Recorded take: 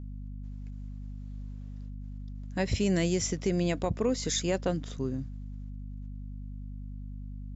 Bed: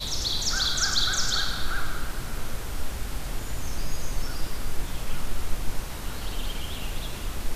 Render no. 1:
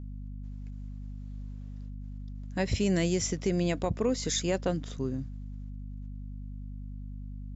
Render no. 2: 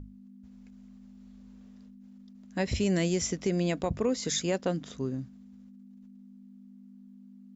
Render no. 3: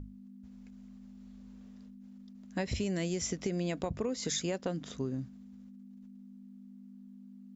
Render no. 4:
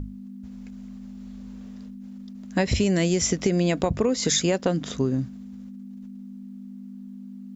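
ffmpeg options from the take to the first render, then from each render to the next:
-af anull
-af "bandreject=f=50:t=h:w=6,bandreject=f=100:t=h:w=6,bandreject=f=150:t=h:w=6"
-af "acompressor=threshold=0.0316:ratio=6"
-af "volume=3.76"

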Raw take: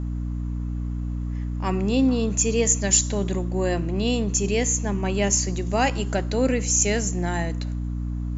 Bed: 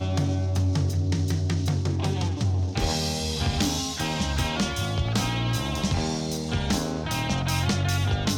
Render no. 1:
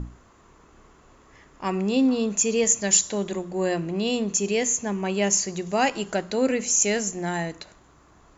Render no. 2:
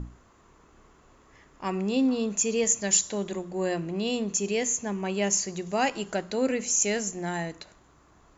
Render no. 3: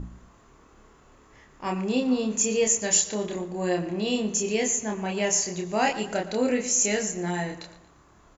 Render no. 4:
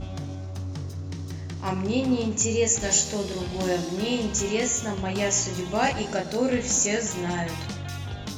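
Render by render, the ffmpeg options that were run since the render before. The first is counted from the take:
-af "bandreject=f=60:t=h:w=6,bandreject=f=120:t=h:w=6,bandreject=f=180:t=h:w=6,bandreject=f=240:t=h:w=6,bandreject=f=300:t=h:w=6"
-af "volume=0.668"
-filter_complex "[0:a]asplit=2[s0][s1];[s1]adelay=28,volume=0.75[s2];[s0][s2]amix=inputs=2:normalize=0,asplit=2[s3][s4];[s4]adelay=116,lowpass=f=4000:p=1,volume=0.2,asplit=2[s5][s6];[s6]adelay=116,lowpass=f=4000:p=1,volume=0.47,asplit=2[s7][s8];[s8]adelay=116,lowpass=f=4000:p=1,volume=0.47,asplit=2[s9][s10];[s10]adelay=116,lowpass=f=4000:p=1,volume=0.47[s11];[s3][s5][s7][s9][s11]amix=inputs=5:normalize=0"
-filter_complex "[1:a]volume=0.335[s0];[0:a][s0]amix=inputs=2:normalize=0"

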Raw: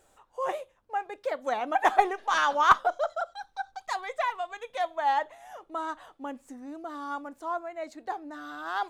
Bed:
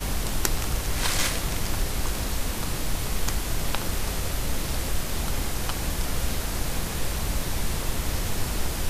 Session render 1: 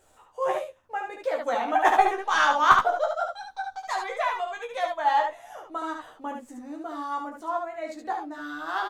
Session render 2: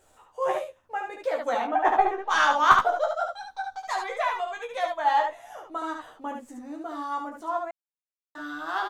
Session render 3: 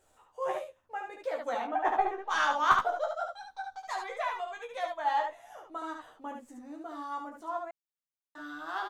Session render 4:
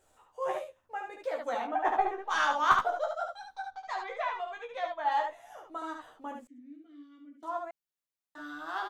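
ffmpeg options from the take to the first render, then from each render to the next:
-filter_complex "[0:a]asplit=2[s0][s1];[s1]adelay=13,volume=0.631[s2];[s0][s2]amix=inputs=2:normalize=0,asplit=2[s3][s4];[s4]aecho=0:1:21|72:0.376|0.596[s5];[s3][s5]amix=inputs=2:normalize=0"
-filter_complex "[0:a]asplit=3[s0][s1][s2];[s0]afade=t=out:st=1.66:d=0.02[s3];[s1]lowpass=f=1200:p=1,afade=t=in:st=1.66:d=0.02,afade=t=out:st=2.29:d=0.02[s4];[s2]afade=t=in:st=2.29:d=0.02[s5];[s3][s4][s5]amix=inputs=3:normalize=0,asplit=3[s6][s7][s8];[s6]atrim=end=7.71,asetpts=PTS-STARTPTS,afade=t=out:st=7.706:d=0.004:c=hsin[s9];[s7]atrim=start=7.71:end=8.35,asetpts=PTS-STARTPTS,volume=0[s10];[s8]atrim=start=8.35,asetpts=PTS-STARTPTS,afade=t=in:d=0.004:c=hsin[s11];[s9][s10][s11]concat=n=3:v=0:a=1"
-af "volume=0.473"
-filter_complex "[0:a]asplit=3[s0][s1][s2];[s0]afade=t=out:st=3.7:d=0.02[s3];[s1]lowpass=4500,afade=t=in:st=3.7:d=0.02,afade=t=out:st=5.1:d=0.02[s4];[s2]afade=t=in:st=5.1:d=0.02[s5];[s3][s4][s5]amix=inputs=3:normalize=0,asettb=1/sr,asplit=3[s6][s7][s8];[s6]atrim=end=6.474[s9];[s7]atrim=start=6.47:end=7.43,asetpts=PTS-STARTPTS,afade=t=in:d=0.004:c=qsin,afade=t=out:st=0.956:d=0.004:c=qsin,asplit=3[s10][s11][s12];[s10]bandpass=f=270:t=q:w=8,volume=1[s13];[s11]bandpass=f=2290:t=q:w=8,volume=0.501[s14];[s12]bandpass=f=3010:t=q:w=8,volume=0.355[s15];[s13][s14][s15]amix=inputs=3:normalize=0[s16];[s8]atrim=start=7.426[s17];[s9][s16]acrossfade=d=0.004:c1=hsin:c2=qsin[s18];[s18][s17]acrossfade=d=0.004:c1=qsin:c2=hsin"

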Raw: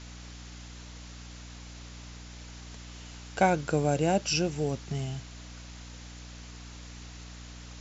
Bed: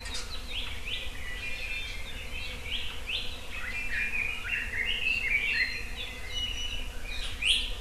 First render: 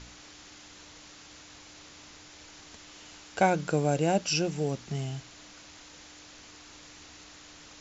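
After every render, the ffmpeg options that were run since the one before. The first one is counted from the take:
-af "bandreject=f=60:t=h:w=4,bandreject=f=120:t=h:w=4,bandreject=f=180:t=h:w=4,bandreject=f=240:t=h:w=4"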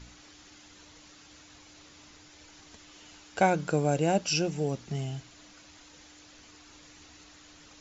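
-af "afftdn=nr=6:nf=-51"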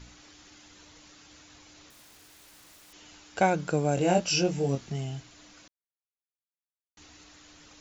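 -filter_complex "[0:a]asettb=1/sr,asplit=3[s0][s1][s2];[s0]atrim=end=1.904[s3];[s1]atrim=start=1.9:end=2.93,asetpts=PTS-STARTPTS,afade=t=in:d=0.004:c=qsin,afade=t=out:st=1.026:d=0.004:c=qsin,aeval=exprs='(mod(282*val(0)+1,2)-1)/282':c=same[s4];[s2]atrim=start=2.926[s5];[s3][s4]acrossfade=d=0.004:c1=hsin:c2=qsin[s6];[s6][s5]acrossfade=d=0.004:c1=qsin:c2=hsin,asettb=1/sr,asplit=3[s7][s8][s9];[s7]atrim=end=3.954[s10];[s8]atrim=start=3.95:end=4.9,asetpts=PTS-STARTPTS,afade=t=in:d=0.004:c=qsin,afade=t=out:st=0.946:d=0.004:c=qsin,asplit=2[s11][s12];[s12]adelay=22,volume=0.794[s13];[s11][s13]amix=inputs=2:normalize=0,atrim=end_sample=41895[s14];[s9]atrim=start=4.896[s15];[s10][s14]acrossfade=d=0.004:c1=hsin:c2=qsin[s16];[s16][s15]acrossfade=d=0.004:c1=qsin:c2=hsin,asplit=3[s17][s18][s19];[s17]atrim=end=5.68,asetpts=PTS-STARTPTS,afade=t=out:st=5.676:d=0.004:c=hsin[s20];[s18]atrim=start=5.68:end=6.97,asetpts=PTS-STARTPTS,volume=0[s21];[s19]atrim=start=6.97,asetpts=PTS-STARTPTS,afade=t=in:d=0.004:c=hsin[s22];[s20][s21][s22]concat=n=3:v=0:a=1"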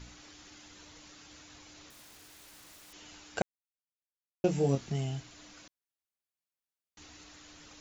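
-filter_complex "[0:a]asplit=3[s0][s1][s2];[s0]atrim=end=3.42,asetpts=PTS-STARTPTS,afade=t=out:st=3.416:d=0.004:c=hsin[s3];[s1]atrim=start=3.42:end=4.44,asetpts=PTS-STARTPTS,volume=0[s4];[s2]atrim=start=4.44,asetpts=PTS-STARTPTS,afade=t=in:d=0.004:c=hsin[s5];[s3][s4][s5]concat=n=3:v=0:a=1"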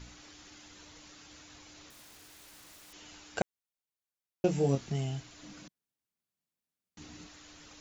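-filter_complex "[0:a]asettb=1/sr,asplit=3[s0][s1][s2];[s0]atrim=end=5.434[s3];[s1]atrim=start=5.43:end=7.27,asetpts=PTS-STARTPTS,afade=t=in:d=0.004:c=qsin,afade=t=out:st=1.836:d=0.004:c=qsin,equalizer=f=180:w=0.82:g=13.5[s4];[s2]atrim=start=7.266[s5];[s3][s4]acrossfade=d=0.004:c1=hsin:c2=qsin[s6];[s6][s5]acrossfade=d=0.004:c1=qsin:c2=hsin"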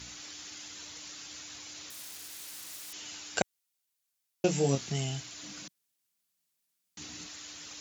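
-af "highpass=74,equalizer=f=15000:t=o:w=2.8:g=12.5"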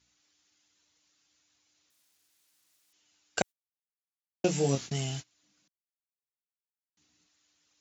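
-af "agate=range=0.0447:threshold=0.0141:ratio=16:detection=peak"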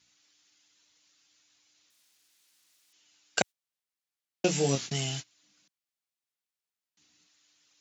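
-af "highpass=89,equalizer=f=3600:t=o:w=2.8:g=5.5"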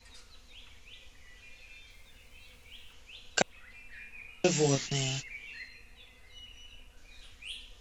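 -filter_complex "[1:a]volume=0.133[s0];[0:a][s0]amix=inputs=2:normalize=0"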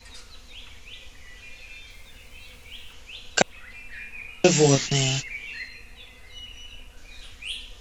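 -af "volume=2.82,alimiter=limit=0.794:level=0:latency=1"

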